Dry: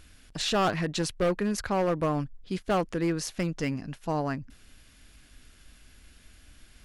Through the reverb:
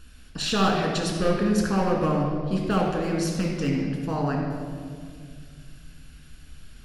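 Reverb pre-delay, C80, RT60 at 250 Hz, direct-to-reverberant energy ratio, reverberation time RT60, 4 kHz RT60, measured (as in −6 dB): 4 ms, 3.5 dB, 3.0 s, −1.0 dB, 2.1 s, 1.5 s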